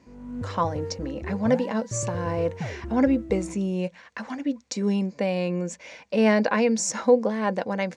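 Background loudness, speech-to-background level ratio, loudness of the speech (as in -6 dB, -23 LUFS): -35.5 LUFS, 10.0 dB, -25.5 LUFS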